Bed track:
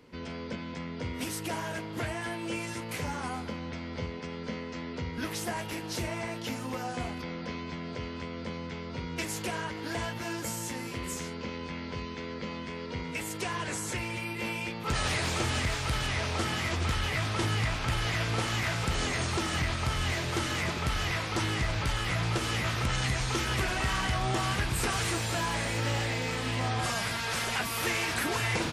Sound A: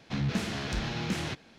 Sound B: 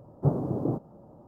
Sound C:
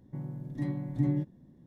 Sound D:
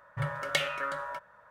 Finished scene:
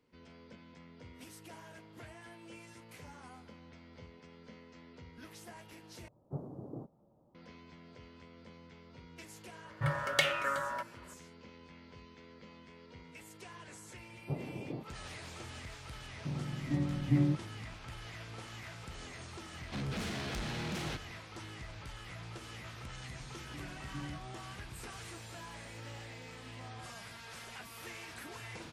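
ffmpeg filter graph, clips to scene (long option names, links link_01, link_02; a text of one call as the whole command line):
ffmpeg -i bed.wav -i cue0.wav -i cue1.wav -i cue2.wav -i cue3.wav -filter_complex "[2:a]asplit=2[link_01][link_02];[3:a]asplit=2[link_03][link_04];[0:a]volume=-17dB[link_05];[1:a]asoftclip=type=tanh:threshold=-34dB[link_06];[link_05]asplit=2[link_07][link_08];[link_07]atrim=end=6.084[link_09];[link_01]atrim=end=1.27,asetpts=PTS-STARTPTS,volume=-16.5dB[link_10];[link_08]atrim=start=7.346[link_11];[4:a]atrim=end=1.5,asetpts=PTS-STARTPTS,afade=type=in:duration=0.004:curve=hsin,afade=type=out:start_time=1.496:duration=0.004:curve=hsin,adelay=9640[link_12];[link_02]atrim=end=1.27,asetpts=PTS-STARTPTS,volume=-13.5dB,afade=type=in:duration=0.004:curve=hsin,afade=type=out:start_time=1.266:duration=0.004:curve=hsin,adelay=14050[link_13];[link_03]atrim=end=1.66,asetpts=PTS-STARTPTS,afade=type=in:duration=0.004:curve=hsin,afade=type=out:start_time=1.656:duration=0.004:curve=hsin,adelay=16120[link_14];[link_06]atrim=end=1.58,asetpts=PTS-STARTPTS,volume=-1dB,afade=type=in:duration=0.004:curve=hsin,afade=type=out:start_time=1.576:duration=0.004:curve=hsin,adelay=19620[link_15];[link_04]atrim=end=1.66,asetpts=PTS-STARTPTS,volume=-16dB,afade=type=in:duration=0.004:curve=hsin,afade=type=out:start_time=1.656:duration=0.004:curve=hsin,adelay=22950[link_16];[link_09][link_10]acrossfade=duration=0.004:curve1=hsin:curve2=hsin[link_17];[link_17][link_11]acrossfade=duration=0.004:curve1=hsin:curve2=hsin[link_18];[link_18][link_12][link_13][link_14][link_15][link_16]amix=inputs=6:normalize=0" out.wav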